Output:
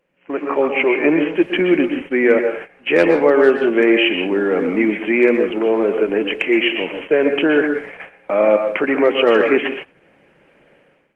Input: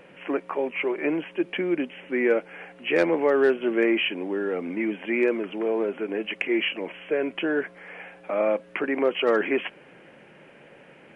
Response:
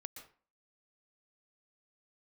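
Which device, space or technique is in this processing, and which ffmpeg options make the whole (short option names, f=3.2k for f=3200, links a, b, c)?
speakerphone in a meeting room: -filter_complex "[1:a]atrim=start_sample=2205[a];[0:a][a]afir=irnorm=-1:irlink=0,dynaudnorm=f=160:g=5:m=16.5dB,agate=range=-13dB:threshold=-29dB:ratio=16:detection=peak" -ar 48000 -c:a libopus -b:a 20k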